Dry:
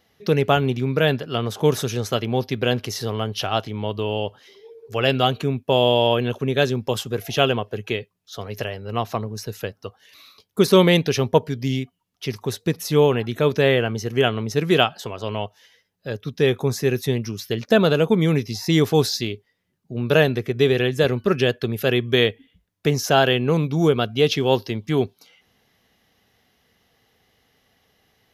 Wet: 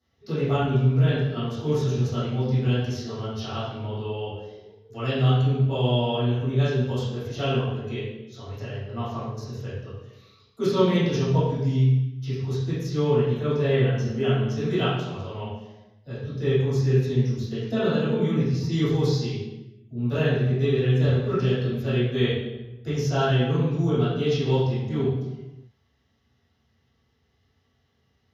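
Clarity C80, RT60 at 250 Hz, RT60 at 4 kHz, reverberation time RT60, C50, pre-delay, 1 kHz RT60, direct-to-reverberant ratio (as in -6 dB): 3.0 dB, n/a, 0.80 s, 1.1 s, -1.0 dB, 3 ms, 1.0 s, -14.0 dB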